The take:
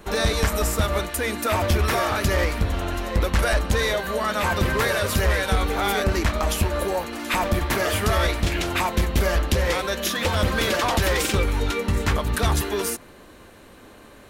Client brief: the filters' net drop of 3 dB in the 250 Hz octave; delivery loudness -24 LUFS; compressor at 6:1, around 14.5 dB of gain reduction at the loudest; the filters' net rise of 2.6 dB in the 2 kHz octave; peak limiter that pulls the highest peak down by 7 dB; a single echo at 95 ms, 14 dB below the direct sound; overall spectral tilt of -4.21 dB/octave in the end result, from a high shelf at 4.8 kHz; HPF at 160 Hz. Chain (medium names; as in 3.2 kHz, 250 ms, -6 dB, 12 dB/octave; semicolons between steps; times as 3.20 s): high-pass 160 Hz; peaking EQ 250 Hz -3 dB; peaking EQ 2 kHz +4 dB; treble shelf 4.8 kHz -5 dB; compression 6:1, threshold -35 dBFS; peak limiter -29 dBFS; delay 95 ms -14 dB; trim +14.5 dB